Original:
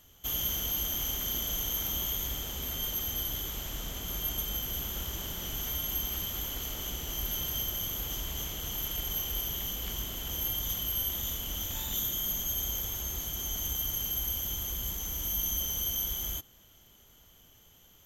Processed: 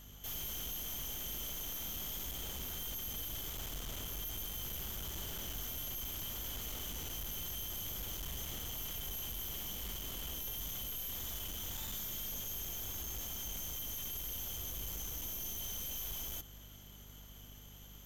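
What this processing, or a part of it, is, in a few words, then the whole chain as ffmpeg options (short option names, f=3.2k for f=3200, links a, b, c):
valve amplifier with mains hum: -af "aeval=exprs='(tanh(178*val(0)+0.4)-tanh(0.4))/178':c=same,aeval=exprs='val(0)+0.00112*(sin(2*PI*50*n/s)+sin(2*PI*2*50*n/s)/2+sin(2*PI*3*50*n/s)/3+sin(2*PI*4*50*n/s)/4+sin(2*PI*5*50*n/s)/5)':c=same,volume=4dB"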